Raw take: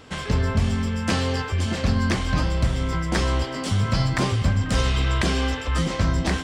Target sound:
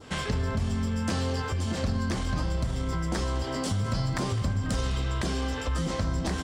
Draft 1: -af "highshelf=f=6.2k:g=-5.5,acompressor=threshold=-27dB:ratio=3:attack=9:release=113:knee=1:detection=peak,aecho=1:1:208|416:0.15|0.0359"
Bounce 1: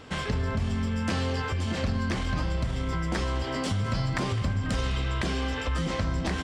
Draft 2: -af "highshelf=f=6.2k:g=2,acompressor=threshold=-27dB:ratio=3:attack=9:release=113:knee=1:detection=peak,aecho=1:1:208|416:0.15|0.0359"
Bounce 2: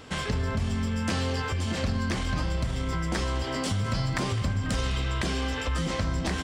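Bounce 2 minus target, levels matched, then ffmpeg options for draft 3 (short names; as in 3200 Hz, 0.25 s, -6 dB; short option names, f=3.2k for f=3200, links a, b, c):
2000 Hz band +3.0 dB
-af "highshelf=f=6.2k:g=2,acompressor=threshold=-27dB:ratio=3:attack=9:release=113:knee=1:detection=peak,adynamicequalizer=threshold=0.00316:dfrequency=2400:dqfactor=1.1:tfrequency=2400:tqfactor=1.1:attack=5:release=100:ratio=0.4:range=3:mode=cutabove:tftype=bell,aecho=1:1:208|416:0.15|0.0359"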